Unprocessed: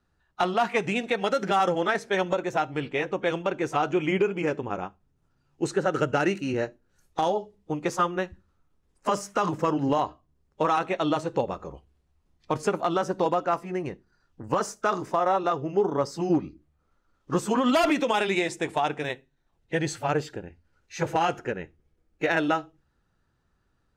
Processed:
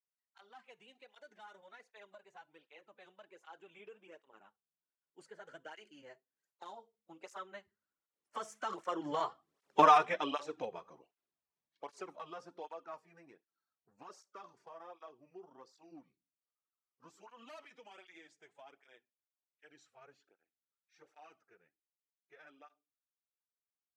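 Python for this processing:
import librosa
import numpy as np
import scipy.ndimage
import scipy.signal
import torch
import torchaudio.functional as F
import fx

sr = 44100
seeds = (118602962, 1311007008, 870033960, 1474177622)

y = fx.doppler_pass(x, sr, speed_mps=27, closest_m=3.7, pass_at_s=9.72)
y = fx.weighting(y, sr, curve='A')
y = fx.flanger_cancel(y, sr, hz=1.3, depth_ms=3.9)
y = y * librosa.db_to_amplitude(8.0)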